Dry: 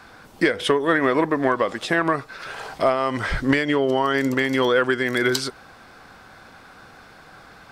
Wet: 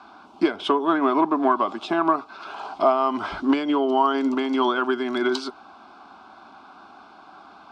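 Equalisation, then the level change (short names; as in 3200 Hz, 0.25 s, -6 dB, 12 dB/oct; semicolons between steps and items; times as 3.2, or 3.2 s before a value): BPF 120–2700 Hz; low shelf 360 Hz -7 dB; fixed phaser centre 500 Hz, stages 6; +5.5 dB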